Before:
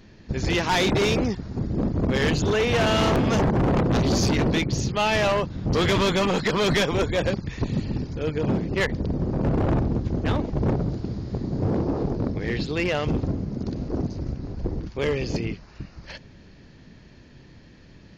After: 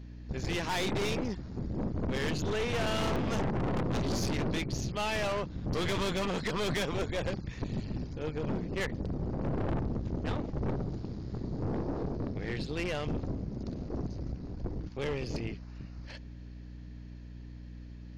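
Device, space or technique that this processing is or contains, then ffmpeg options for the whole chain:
valve amplifier with mains hum: -af "aeval=exprs='(tanh(12.6*val(0)+0.55)-tanh(0.55))/12.6':c=same,aeval=exprs='val(0)+0.0126*(sin(2*PI*60*n/s)+sin(2*PI*2*60*n/s)/2+sin(2*PI*3*60*n/s)/3+sin(2*PI*4*60*n/s)/4+sin(2*PI*5*60*n/s)/5)':c=same,volume=-6dB"

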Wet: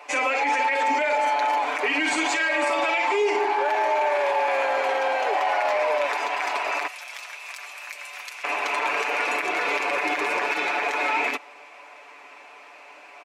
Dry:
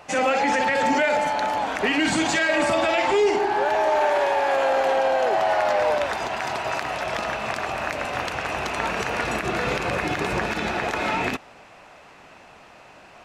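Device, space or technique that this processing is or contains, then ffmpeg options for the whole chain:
laptop speaker: -filter_complex "[0:a]asettb=1/sr,asplit=3[a][b][c];[a]atrim=end=6.874[d];[b]atrim=start=6.87:end=8.44,asetpts=PTS-STARTPTS,afade=t=in:d=0.004:c=qsin,afade=t=out:st=1.566:d=0.004:c=qsin,aderivative[e];[c]atrim=start=8.436[f];[d][e]acrossfade=d=0.004:c1=hsin:c2=qsin[g];[g][f]acrossfade=d=0.004:c1=qsin:c2=hsin,highpass=f=320:w=0.5412,highpass=f=320:w=1.3066,equalizer=f=1k:t=o:w=0.33:g=6,equalizer=f=2.3k:t=o:w=0.33:g=10,aecho=1:1:6.9:0.62,alimiter=limit=-12.5dB:level=0:latency=1:release=22,volume=-2.5dB"

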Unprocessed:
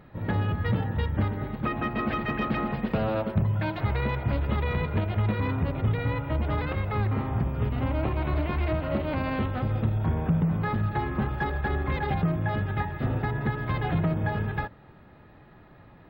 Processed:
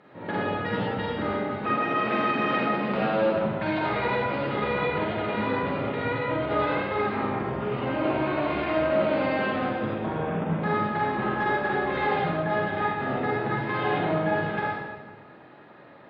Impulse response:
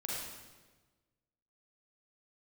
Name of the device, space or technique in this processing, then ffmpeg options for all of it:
supermarket ceiling speaker: -filter_complex "[0:a]highpass=290,lowpass=6.4k[a];[1:a]atrim=start_sample=2205[b];[a][b]afir=irnorm=-1:irlink=0,volume=4dB"

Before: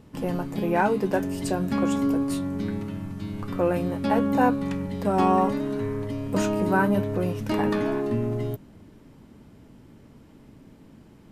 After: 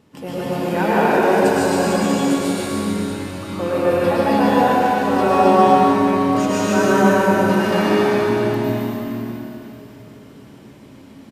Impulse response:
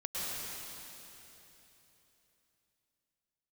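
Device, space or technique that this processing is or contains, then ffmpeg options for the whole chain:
stadium PA: -filter_complex "[0:a]highpass=f=180:p=1,equalizer=f=3.5k:t=o:w=3:g=3,aecho=1:1:148.7|268.2:0.794|0.501[a];[1:a]atrim=start_sample=2205[b];[a][b]afir=irnorm=-1:irlink=0,volume=2dB"

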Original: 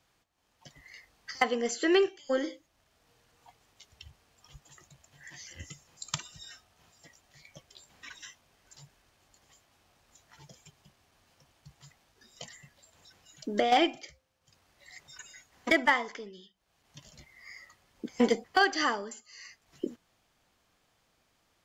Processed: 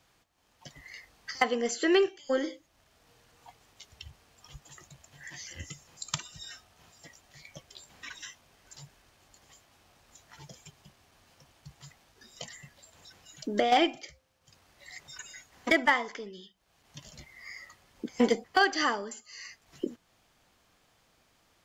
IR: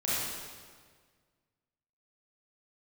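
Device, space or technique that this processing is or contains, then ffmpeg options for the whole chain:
parallel compression: -filter_complex "[0:a]asplit=2[a][b];[b]acompressor=threshold=-46dB:ratio=6,volume=-3.5dB[c];[a][c]amix=inputs=2:normalize=0"

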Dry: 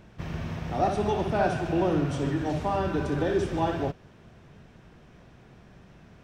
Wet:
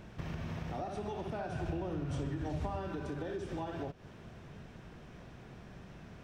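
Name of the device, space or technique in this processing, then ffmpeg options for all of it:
serial compression, peaks first: -filter_complex "[0:a]acompressor=threshold=-32dB:ratio=6,acompressor=threshold=-41dB:ratio=2,asettb=1/sr,asplit=3[a][b][c];[a]atrim=end=1.494[d];[b]atrim=start=1.49:end=2.8,asetpts=PTS-STARTPTS,afade=t=in:d=0.004:c=qsin,afade=t=out:st=1.306:d=0.004:c=qsin,equalizer=f=62:w=0.79:g=11.5[e];[c]atrim=start=2.796[f];[d][e]acrossfade=d=0.004:c1=hsin:c2=qsin[g];[g][f]acrossfade=d=0.004:c1=qsin:c2=hsin,volume=1dB"

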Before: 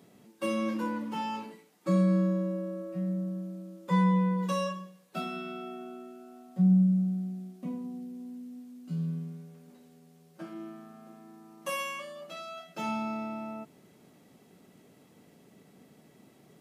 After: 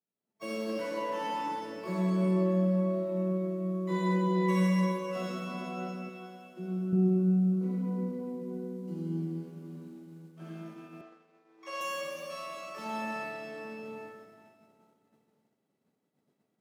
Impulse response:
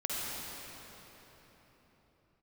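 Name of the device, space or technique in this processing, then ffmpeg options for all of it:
shimmer-style reverb: -filter_complex "[0:a]asplit=2[a][b];[b]asetrate=88200,aresample=44100,atempo=0.5,volume=-6dB[c];[a][c]amix=inputs=2:normalize=0[d];[1:a]atrim=start_sample=2205[e];[d][e]afir=irnorm=-1:irlink=0,agate=range=-33dB:threshold=-36dB:ratio=3:detection=peak,asettb=1/sr,asplit=3[f][g][h];[f]atrim=end=6.094[i];[g]atrim=start=6.09:end=6.93,asetpts=PTS-STARTPTS,afade=t=in:d=0.004:c=qsin,afade=t=out:st=0.836:d=0.004:c=qsin,lowshelf=f=480:g=-9[j];[h]atrim=start=6.926[k];[i][j]acrossfade=d=0.004:c1=hsin:c2=qsin[l];[l][k]acrossfade=d=0.004:c1=qsin:c2=hsin,highpass=94,asettb=1/sr,asplit=3[m][n][o];[m]atrim=end=11.014[p];[n]atrim=start=11.01:end=11.81,asetpts=PTS-STARTPTS,afade=t=in:d=0.004:c=qsin,afade=t=out:st=0.796:d=0.004:c=qsin,acrossover=split=330 6800:gain=0.178 1 0.0891[q][r][s];[q][r][s]amix=inputs=3:normalize=0[t];[o]atrim=start=11.806[u];[p][t]acrossfade=d=0.004:c1=hsin:c2=qsin[v];[v][u]acrossfade=d=0.004:c1=qsin:c2=hsin,volume=-8dB"

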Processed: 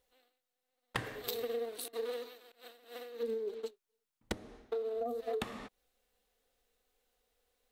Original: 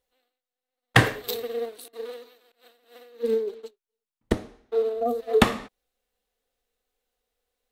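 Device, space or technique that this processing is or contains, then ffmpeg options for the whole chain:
serial compression, peaks first: -af "acompressor=threshold=-32dB:ratio=6,acompressor=threshold=-38dB:ratio=2.5,volume=2.5dB"

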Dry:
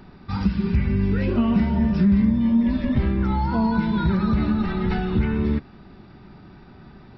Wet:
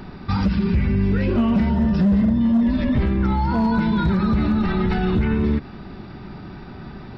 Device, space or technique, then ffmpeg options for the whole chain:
clipper into limiter: -filter_complex "[0:a]asoftclip=type=hard:threshold=-14.5dB,alimiter=limit=-22dB:level=0:latency=1:release=63,asettb=1/sr,asplit=3[a][b][c];[a]atrim=end=1.694[d];[b]atrim=start=1.69:end=2.73,asetpts=PTS-STARTPTS,afade=t=in:d=0.004:c=qsin,afade=t=out:st=1.036:d=0.004:c=qsin,bandreject=f=2.3k:w=6.8[e];[c]atrim=start=2.726[f];[d][e]acrossfade=d=0.004:c1=hsin:c2=qsin[g];[g][f]acrossfade=d=0.004:c1=qsin:c2=hsin,volume=9dB"

